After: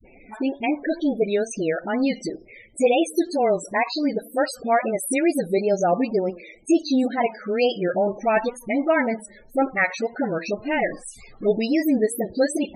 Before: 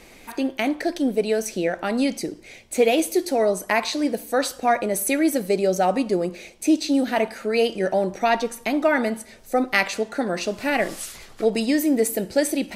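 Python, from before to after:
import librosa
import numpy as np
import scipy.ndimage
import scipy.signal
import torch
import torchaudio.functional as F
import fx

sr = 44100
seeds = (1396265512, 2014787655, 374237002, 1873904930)

y = fx.wow_flutter(x, sr, seeds[0], rate_hz=2.1, depth_cents=110.0)
y = fx.dispersion(y, sr, late='highs', ms=47.0, hz=360.0)
y = fx.spec_topn(y, sr, count=32)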